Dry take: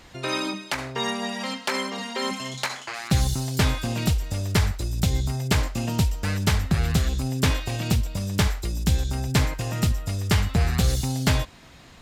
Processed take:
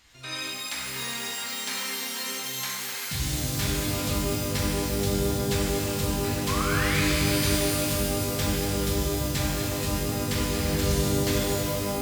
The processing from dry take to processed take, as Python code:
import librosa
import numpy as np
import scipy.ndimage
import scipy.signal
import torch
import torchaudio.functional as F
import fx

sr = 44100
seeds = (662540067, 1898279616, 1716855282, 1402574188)

y = fx.tone_stack(x, sr, knobs='5-5-5')
y = fx.spec_paint(y, sr, seeds[0], shape='rise', start_s=6.47, length_s=0.55, low_hz=1000.0, high_hz=2600.0, level_db=-35.0)
y = fx.rev_shimmer(y, sr, seeds[1], rt60_s=3.1, semitones=12, shimmer_db=-2, drr_db=-4.5)